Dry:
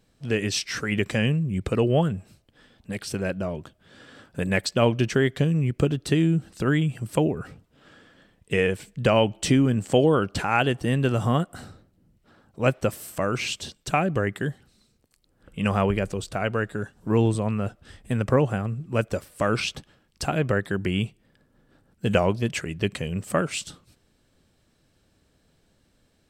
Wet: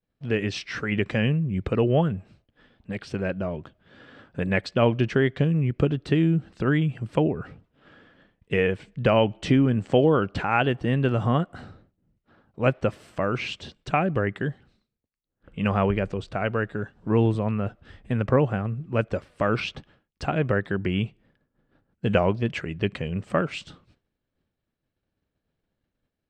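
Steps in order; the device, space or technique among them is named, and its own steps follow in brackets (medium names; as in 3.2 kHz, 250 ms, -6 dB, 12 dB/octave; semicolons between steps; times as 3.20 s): hearing-loss simulation (low-pass 3.1 kHz 12 dB/octave; expander -54 dBFS)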